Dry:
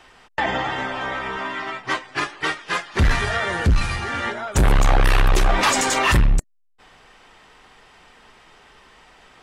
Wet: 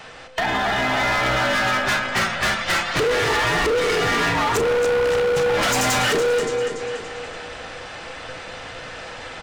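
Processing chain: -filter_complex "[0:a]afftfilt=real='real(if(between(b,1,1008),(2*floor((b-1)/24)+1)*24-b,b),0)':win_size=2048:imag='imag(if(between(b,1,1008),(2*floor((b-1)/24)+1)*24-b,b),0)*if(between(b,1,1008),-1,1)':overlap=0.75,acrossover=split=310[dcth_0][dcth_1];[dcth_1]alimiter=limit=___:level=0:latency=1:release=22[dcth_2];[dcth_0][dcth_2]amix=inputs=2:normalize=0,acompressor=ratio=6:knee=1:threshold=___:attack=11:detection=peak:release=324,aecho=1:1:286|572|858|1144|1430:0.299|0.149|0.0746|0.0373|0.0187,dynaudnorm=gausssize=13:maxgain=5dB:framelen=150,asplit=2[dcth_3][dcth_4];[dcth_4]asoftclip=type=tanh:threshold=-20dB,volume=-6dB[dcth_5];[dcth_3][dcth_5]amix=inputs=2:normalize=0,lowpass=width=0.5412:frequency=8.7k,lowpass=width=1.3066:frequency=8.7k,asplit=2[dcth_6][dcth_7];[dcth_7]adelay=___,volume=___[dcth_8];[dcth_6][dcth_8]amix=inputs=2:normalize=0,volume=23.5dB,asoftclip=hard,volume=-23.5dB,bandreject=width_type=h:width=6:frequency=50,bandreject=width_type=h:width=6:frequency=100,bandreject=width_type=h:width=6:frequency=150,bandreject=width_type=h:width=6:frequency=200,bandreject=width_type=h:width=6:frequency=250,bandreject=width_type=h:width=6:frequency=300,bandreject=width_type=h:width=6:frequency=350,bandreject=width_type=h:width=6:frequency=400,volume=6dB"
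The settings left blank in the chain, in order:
-12dB, -27dB, 35, -11.5dB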